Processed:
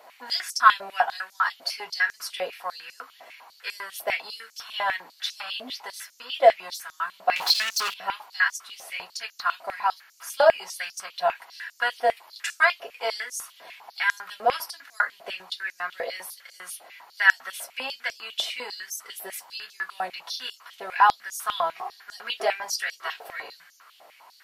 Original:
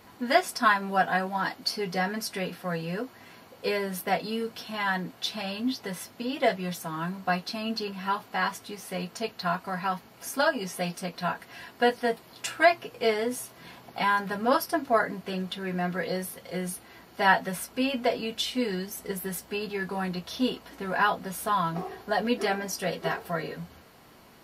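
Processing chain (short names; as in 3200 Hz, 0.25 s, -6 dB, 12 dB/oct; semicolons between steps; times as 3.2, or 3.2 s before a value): 7.36–7.94 sample leveller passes 5; stepped high-pass 10 Hz 640–6100 Hz; gain -1 dB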